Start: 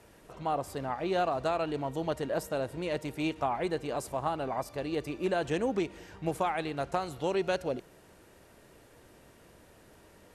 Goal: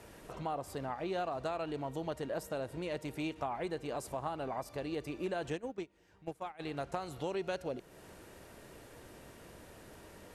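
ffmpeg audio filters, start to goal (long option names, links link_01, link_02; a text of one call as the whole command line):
ffmpeg -i in.wav -filter_complex "[0:a]acompressor=threshold=-46dB:ratio=2,asplit=3[link_01][link_02][link_03];[link_01]afade=type=out:start_time=5.55:duration=0.02[link_04];[link_02]agate=range=-18dB:threshold=-38dB:ratio=16:detection=peak,afade=type=in:start_time=5.55:duration=0.02,afade=type=out:start_time=6.59:duration=0.02[link_05];[link_03]afade=type=in:start_time=6.59:duration=0.02[link_06];[link_04][link_05][link_06]amix=inputs=3:normalize=0,volume=3.5dB" out.wav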